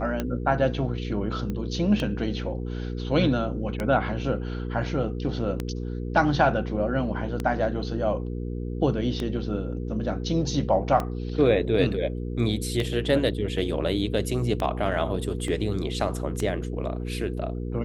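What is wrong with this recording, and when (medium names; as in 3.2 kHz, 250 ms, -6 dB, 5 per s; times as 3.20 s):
hum 60 Hz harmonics 8 -31 dBFS
tick 33 1/3 rpm -14 dBFS
1.50 s: pop -20 dBFS
15.48 s: dropout 2.1 ms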